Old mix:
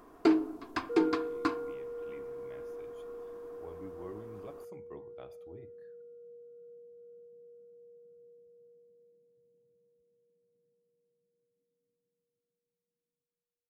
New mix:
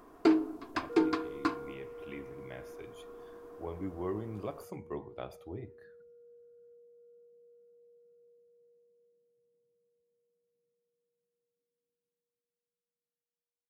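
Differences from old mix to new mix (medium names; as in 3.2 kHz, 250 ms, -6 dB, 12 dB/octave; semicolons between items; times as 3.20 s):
speech +9.0 dB; second sound: add bass shelf 490 Hz -11.5 dB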